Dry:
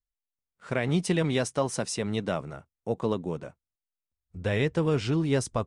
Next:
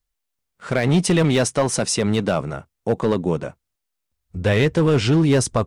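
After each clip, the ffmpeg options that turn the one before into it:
-filter_complex "[0:a]asplit=2[a][b];[b]alimiter=limit=-22dB:level=0:latency=1:release=22,volume=-0.5dB[c];[a][c]amix=inputs=2:normalize=0,volume=16.5dB,asoftclip=hard,volume=-16.5dB,volume=5.5dB"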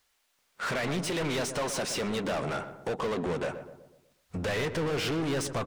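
-filter_complex "[0:a]acompressor=threshold=-30dB:ratio=2.5,asplit=2[a][b];[b]highpass=f=720:p=1,volume=30dB,asoftclip=type=tanh:threshold=-17dB[c];[a][c]amix=inputs=2:normalize=0,lowpass=f=4.5k:p=1,volume=-6dB,asplit=2[d][e];[e]adelay=123,lowpass=f=1.2k:p=1,volume=-9dB,asplit=2[f][g];[g]adelay=123,lowpass=f=1.2k:p=1,volume=0.51,asplit=2[h][i];[i]adelay=123,lowpass=f=1.2k:p=1,volume=0.51,asplit=2[j][k];[k]adelay=123,lowpass=f=1.2k:p=1,volume=0.51,asplit=2[l][m];[m]adelay=123,lowpass=f=1.2k:p=1,volume=0.51,asplit=2[n][o];[o]adelay=123,lowpass=f=1.2k:p=1,volume=0.51[p];[f][h][j][l][n][p]amix=inputs=6:normalize=0[q];[d][q]amix=inputs=2:normalize=0,volume=-7dB"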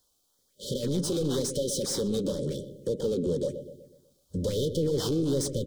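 -filter_complex "[0:a]afftfilt=real='re*(1-between(b*sr/4096,600,3000))':imag='im*(1-between(b*sr/4096,600,3000))':win_size=4096:overlap=0.75,acrossover=split=300|1600|3400[a][b][c][d];[c]acrusher=samples=13:mix=1:aa=0.000001:lfo=1:lforange=20.8:lforate=1[e];[a][b][e][d]amix=inputs=4:normalize=0,volume=3.5dB"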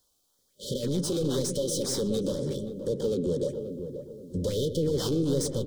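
-filter_complex "[0:a]asplit=2[a][b];[b]adelay=529,lowpass=f=910:p=1,volume=-8dB,asplit=2[c][d];[d]adelay=529,lowpass=f=910:p=1,volume=0.41,asplit=2[e][f];[f]adelay=529,lowpass=f=910:p=1,volume=0.41,asplit=2[g][h];[h]adelay=529,lowpass=f=910:p=1,volume=0.41,asplit=2[i][j];[j]adelay=529,lowpass=f=910:p=1,volume=0.41[k];[a][c][e][g][i][k]amix=inputs=6:normalize=0"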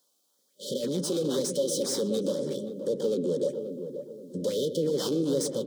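-af "highpass=f=180:w=0.5412,highpass=f=180:w=1.3066,equalizer=f=560:t=o:w=0.25:g=3.5"

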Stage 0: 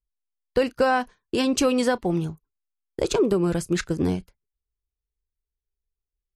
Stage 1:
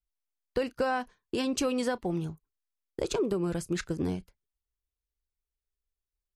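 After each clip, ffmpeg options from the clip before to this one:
-af "acompressor=threshold=-28dB:ratio=1.5,volume=-4dB"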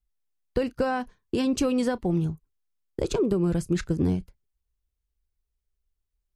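-af "lowshelf=f=300:g=11"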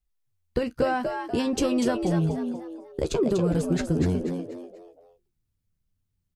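-filter_complex "[0:a]asplit=2[a][b];[b]adelay=13,volume=-9dB[c];[a][c]amix=inputs=2:normalize=0,asplit=2[d][e];[e]asplit=4[f][g][h][i];[f]adelay=243,afreqshift=83,volume=-6dB[j];[g]adelay=486,afreqshift=166,volume=-14.9dB[k];[h]adelay=729,afreqshift=249,volume=-23.7dB[l];[i]adelay=972,afreqshift=332,volume=-32.6dB[m];[j][k][l][m]amix=inputs=4:normalize=0[n];[d][n]amix=inputs=2:normalize=0"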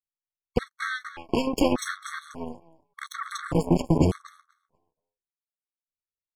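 -af "aeval=exprs='0.282*(cos(1*acos(clip(val(0)/0.282,-1,1)))-cos(1*PI/2))+0.0178*(cos(6*acos(clip(val(0)/0.282,-1,1)))-cos(6*PI/2))+0.0398*(cos(7*acos(clip(val(0)/0.282,-1,1)))-cos(7*PI/2))':c=same,afftfilt=real='re*gt(sin(2*PI*0.85*pts/sr)*(1-2*mod(floor(b*sr/1024/1100),2)),0)':imag='im*gt(sin(2*PI*0.85*pts/sr)*(1-2*mod(floor(b*sr/1024/1100),2)),0)':win_size=1024:overlap=0.75,volume=4dB"

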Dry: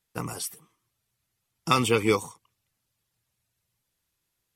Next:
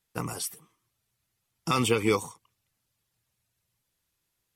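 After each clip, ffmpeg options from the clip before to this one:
-af "alimiter=limit=-12dB:level=0:latency=1:release=95"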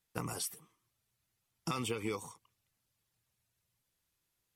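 -af "acompressor=threshold=-29dB:ratio=10,volume=-3.5dB"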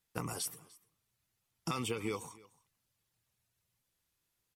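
-af "aecho=1:1:298:0.075"

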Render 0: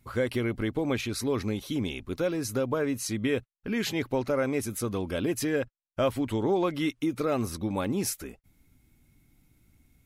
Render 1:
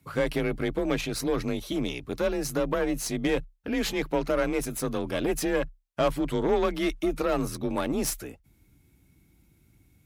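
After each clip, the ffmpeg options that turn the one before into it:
-af "aeval=exprs='0.188*(cos(1*acos(clip(val(0)/0.188,-1,1)))-cos(1*PI/2))+0.0188*(cos(6*acos(clip(val(0)/0.188,-1,1)))-cos(6*PI/2))':c=same,afreqshift=32,volume=1dB"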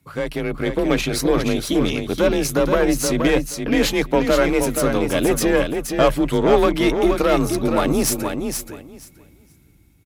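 -filter_complex "[0:a]dynaudnorm=f=180:g=7:m=8dB,asplit=2[a][b];[b]aecho=0:1:475|950|1425:0.501|0.0802|0.0128[c];[a][c]amix=inputs=2:normalize=0,volume=1dB"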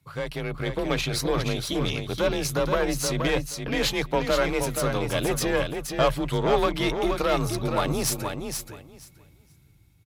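-af "equalizer=f=125:t=o:w=1:g=8,equalizer=f=250:t=o:w=1:g=-7,equalizer=f=1k:t=o:w=1:g=3,equalizer=f=4k:t=o:w=1:g=5,volume=-6.5dB"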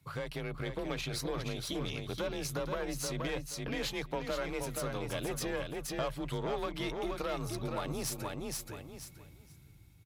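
-af "acompressor=threshold=-39dB:ratio=2.5"

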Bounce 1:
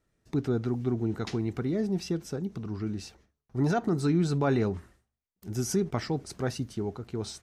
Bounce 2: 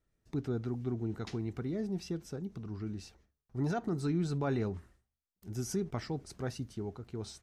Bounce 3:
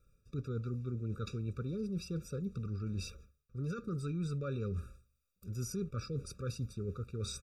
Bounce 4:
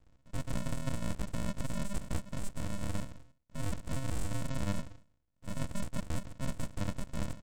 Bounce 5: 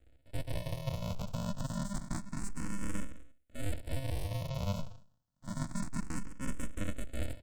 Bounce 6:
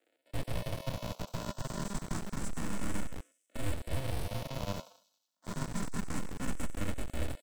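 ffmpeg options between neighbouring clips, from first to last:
-af "lowshelf=f=66:g=8.5,volume=-7.5dB"
-af "aecho=1:1:1.6:0.6,areverse,acompressor=threshold=-44dB:ratio=5,areverse,afftfilt=real='re*eq(mod(floor(b*sr/1024/560),2),0)':imag='im*eq(mod(floor(b*sr/1024/560),2),0)':win_size=1024:overlap=0.75,volume=8.5dB"
-af "aresample=16000,acrusher=samples=40:mix=1:aa=0.000001,aresample=44100,aeval=exprs='abs(val(0))':c=same,volume=6dB"
-filter_complex "[0:a]asplit=2[a][b];[b]afreqshift=0.28[c];[a][c]amix=inputs=2:normalize=1,volume=2.5dB"
-filter_complex "[0:a]acrossover=split=320|850|3300[a][b][c][d];[a]acrusher=bits=4:dc=4:mix=0:aa=0.000001[e];[d]aecho=1:1:92|184|276|368|460|552:0.211|0.127|0.0761|0.0457|0.0274|0.0164[f];[e][b][c][f]amix=inputs=4:normalize=0,volume=1dB"

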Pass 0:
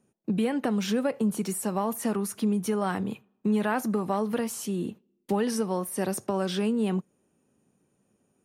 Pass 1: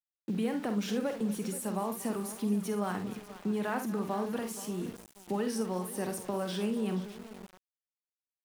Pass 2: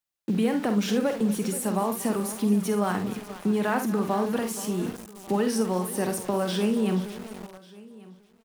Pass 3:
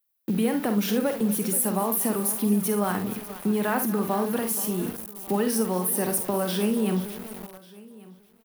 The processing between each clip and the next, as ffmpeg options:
-af "aecho=1:1:49|72|237|475|601:0.398|0.2|0.141|0.178|0.119,aeval=exprs='val(0)*gte(abs(val(0)),0.0112)':c=same,volume=-6.5dB"
-af "aecho=1:1:1142:0.0794,volume=7.5dB"
-af "aexciter=amount=5.2:drive=3.6:freq=10k"

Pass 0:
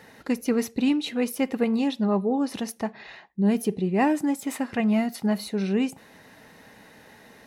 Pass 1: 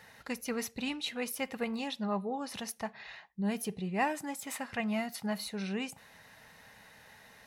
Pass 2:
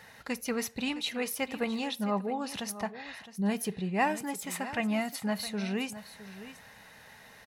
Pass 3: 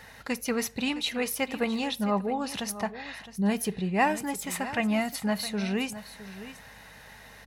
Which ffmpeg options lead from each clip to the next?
-af "equalizer=f=310:t=o:w=1.4:g=-14,volume=-3dB"
-af "aecho=1:1:662:0.2,volume=3dB"
-af "aeval=exprs='val(0)+0.000794*(sin(2*PI*50*n/s)+sin(2*PI*2*50*n/s)/2+sin(2*PI*3*50*n/s)/3+sin(2*PI*4*50*n/s)/4+sin(2*PI*5*50*n/s)/5)':c=same,volume=3.5dB"

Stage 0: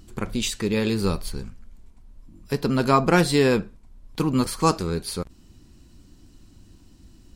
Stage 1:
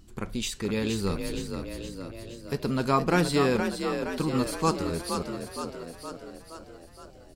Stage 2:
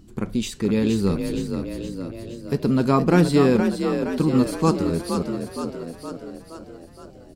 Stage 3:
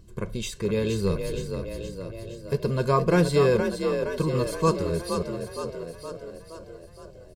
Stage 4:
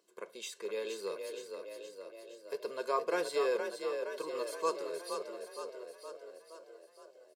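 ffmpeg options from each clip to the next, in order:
-filter_complex "[0:a]asplit=9[a][b][c][d][e][f][g][h][i];[b]adelay=469,afreqshift=42,volume=-6.5dB[j];[c]adelay=938,afreqshift=84,volume=-11.1dB[k];[d]adelay=1407,afreqshift=126,volume=-15.7dB[l];[e]adelay=1876,afreqshift=168,volume=-20.2dB[m];[f]adelay=2345,afreqshift=210,volume=-24.8dB[n];[g]adelay=2814,afreqshift=252,volume=-29.4dB[o];[h]adelay=3283,afreqshift=294,volume=-34dB[p];[i]adelay=3752,afreqshift=336,volume=-38.6dB[q];[a][j][k][l][m][n][o][p][q]amix=inputs=9:normalize=0,volume=-5.5dB"
-af "equalizer=f=220:w=0.49:g=9.5"
-af "aecho=1:1:1.9:0.8,volume=-4dB"
-af "highpass=f=410:w=0.5412,highpass=f=410:w=1.3066,volume=-8.5dB"

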